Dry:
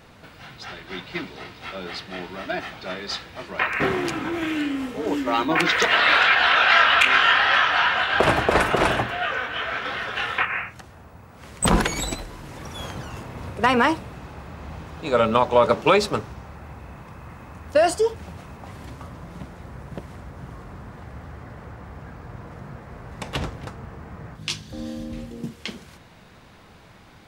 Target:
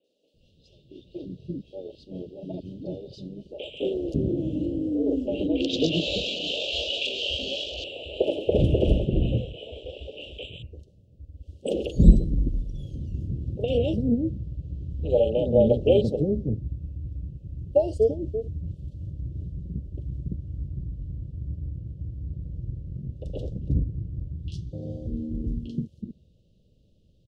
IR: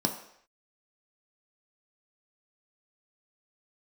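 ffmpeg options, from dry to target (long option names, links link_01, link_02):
-filter_complex "[0:a]afwtdn=0.0447,asuperstop=centerf=1300:order=20:qfactor=0.59,lowshelf=frequency=83:gain=11.5,acrossover=split=340|3200[link_01][link_02][link_03];[link_03]adelay=40[link_04];[link_01]adelay=340[link_05];[link_05][link_02][link_04]amix=inputs=3:normalize=0,tremolo=f=220:d=0.261,aemphasis=mode=reproduction:type=50fm,volume=3dB"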